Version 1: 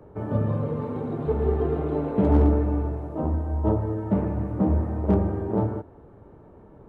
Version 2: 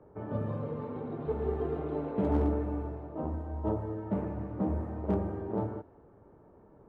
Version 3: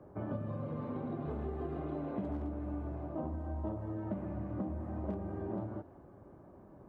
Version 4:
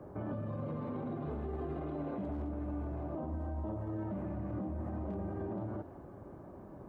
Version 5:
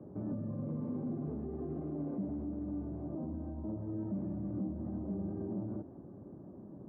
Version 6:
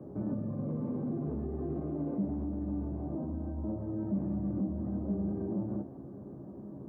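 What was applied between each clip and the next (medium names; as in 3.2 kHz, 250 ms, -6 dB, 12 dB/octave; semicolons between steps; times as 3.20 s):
level-controlled noise filter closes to 1.9 kHz, open at -17.5 dBFS; bass shelf 180 Hz -5.5 dB; trim -6.5 dB
comb of notches 450 Hz; compression 12:1, threshold -38 dBFS, peak gain reduction 15 dB; trim +3.5 dB
peak limiter -37 dBFS, peak gain reduction 10.5 dB; trim +5.5 dB
band-pass filter 210 Hz, Q 1.2; trim +4 dB
feedback comb 68 Hz, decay 0.16 s, harmonics all, mix 80%; trim +8.5 dB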